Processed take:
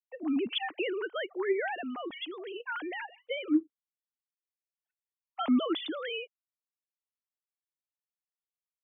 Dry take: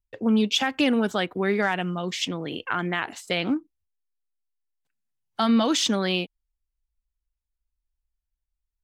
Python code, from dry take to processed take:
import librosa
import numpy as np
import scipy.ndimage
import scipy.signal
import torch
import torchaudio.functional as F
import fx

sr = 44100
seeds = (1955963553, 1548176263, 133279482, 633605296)

y = fx.sine_speech(x, sr)
y = F.gain(torch.from_numpy(y), -8.0).numpy()